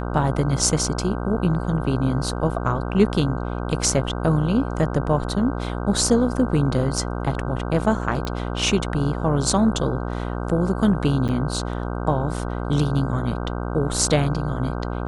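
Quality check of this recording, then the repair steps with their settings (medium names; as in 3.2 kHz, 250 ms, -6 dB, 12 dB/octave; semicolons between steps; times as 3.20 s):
buzz 60 Hz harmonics 26 -27 dBFS
8.25 s: pop -16 dBFS
11.28–11.29 s: dropout 8.4 ms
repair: de-click; de-hum 60 Hz, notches 26; interpolate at 11.28 s, 8.4 ms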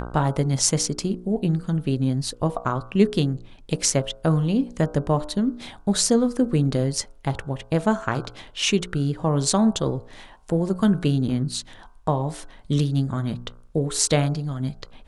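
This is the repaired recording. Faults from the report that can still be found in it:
nothing left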